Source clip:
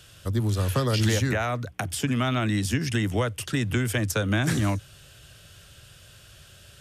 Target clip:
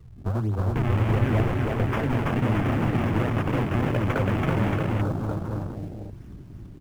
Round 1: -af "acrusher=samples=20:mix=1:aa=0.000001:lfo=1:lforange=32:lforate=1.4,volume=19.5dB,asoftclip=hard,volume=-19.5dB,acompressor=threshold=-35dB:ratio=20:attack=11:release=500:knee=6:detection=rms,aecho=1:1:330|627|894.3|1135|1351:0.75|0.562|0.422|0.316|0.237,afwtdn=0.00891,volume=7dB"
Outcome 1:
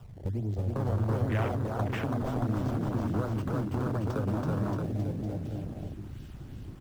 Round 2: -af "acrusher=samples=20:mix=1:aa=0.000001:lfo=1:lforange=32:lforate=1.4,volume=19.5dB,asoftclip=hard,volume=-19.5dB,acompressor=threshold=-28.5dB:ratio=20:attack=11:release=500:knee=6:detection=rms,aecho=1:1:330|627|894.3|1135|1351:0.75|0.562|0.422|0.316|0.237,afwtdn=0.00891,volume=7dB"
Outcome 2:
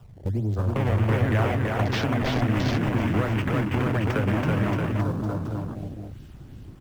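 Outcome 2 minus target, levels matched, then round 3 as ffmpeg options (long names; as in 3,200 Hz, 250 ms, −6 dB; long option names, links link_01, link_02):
sample-and-hold swept by an LFO: distortion −6 dB
-af "acrusher=samples=52:mix=1:aa=0.000001:lfo=1:lforange=83.2:lforate=1.4,volume=19.5dB,asoftclip=hard,volume=-19.5dB,acompressor=threshold=-28.5dB:ratio=20:attack=11:release=500:knee=6:detection=rms,aecho=1:1:330|627|894.3|1135|1351:0.75|0.562|0.422|0.316|0.237,afwtdn=0.00891,volume=7dB"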